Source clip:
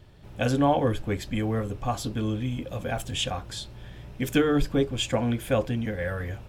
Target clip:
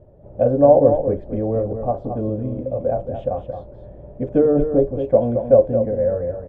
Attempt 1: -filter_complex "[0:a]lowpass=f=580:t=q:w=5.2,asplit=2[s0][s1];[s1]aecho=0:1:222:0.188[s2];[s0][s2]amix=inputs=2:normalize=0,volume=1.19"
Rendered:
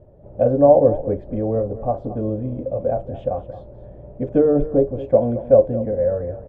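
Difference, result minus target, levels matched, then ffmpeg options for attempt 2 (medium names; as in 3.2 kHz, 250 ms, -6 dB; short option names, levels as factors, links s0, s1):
echo-to-direct -6.5 dB
-filter_complex "[0:a]lowpass=f=580:t=q:w=5.2,asplit=2[s0][s1];[s1]aecho=0:1:222:0.398[s2];[s0][s2]amix=inputs=2:normalize=0,volume=1.19"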